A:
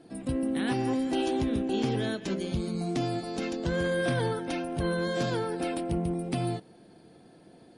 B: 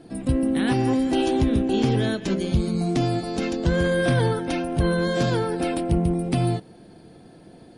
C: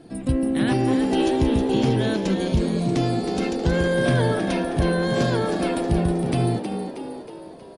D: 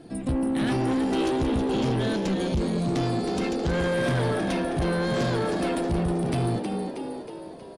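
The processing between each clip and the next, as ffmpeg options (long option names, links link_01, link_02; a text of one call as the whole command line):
ffmpeg -i in.wav -af "lowshelf=frequency=110:gain=9.5,volume=5.5dB" out.wav
ffmpeg -i in.wav -filter_complex "[0:a]asplit=7[link_01][link_02][link_03][link_04][link_05][link_06][link_07];[link_02]adelay=317,afreqshift=68,volume=-7.5dB[link_08];[link_03]adelay=634,afreqshift=136,volume=-13.2dB[link_09];[link_04]adelay=951,afreqshift=204,volume=-18.9dB[link_10];[link_05]adelay=1268,afreqshift=272,volume=-24.5dB[link_11];[link_06]adelay=1585,afreqshift=340,volume=-30.2dB[link_12];[link_07]adelay=1902,afreqshift=408,volume=-35.9dB[link_13];[link_01][link_08][link_09][link_10][link_11][link_12][link_13]amix=inputs=7:normalize=0" out.wav
ffmpeg -i in.wav -af "asoftclip=type=tanh:threshold=-20.5dB" out.wav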